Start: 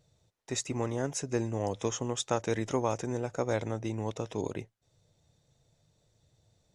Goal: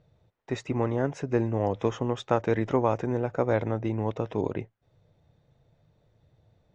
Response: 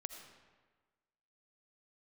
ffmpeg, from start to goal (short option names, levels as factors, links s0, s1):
-af "lowpass=2200,volume=1.88"